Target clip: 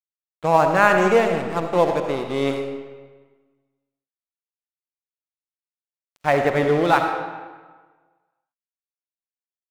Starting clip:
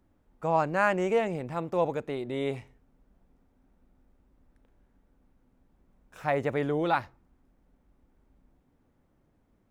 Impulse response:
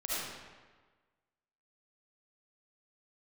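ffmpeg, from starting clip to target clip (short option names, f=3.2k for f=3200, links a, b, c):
-filter_complex "[0:a]aeval=exprs='sgn(val(0))*max(abs(val(0))-0.0112,0)':c=same,asplit=2[a][b];[1:a]atrim=start_sample=2205,lowshelf=f=60:g=-11.5[c];[b][c]afir=irnorm=-1:irlink=0,volume=-7.5dB[d];[a][d]amix=inputs=2:normalize=0,volume=8dB"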